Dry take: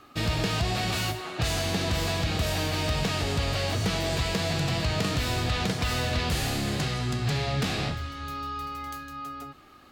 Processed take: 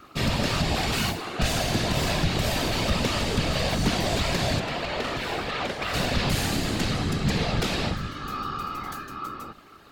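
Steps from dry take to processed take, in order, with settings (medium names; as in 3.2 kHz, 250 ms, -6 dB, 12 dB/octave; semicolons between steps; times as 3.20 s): 4.59–5.94 s: tone controls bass -13 dB, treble -11 dB; whisper effect; trim +2.5 dB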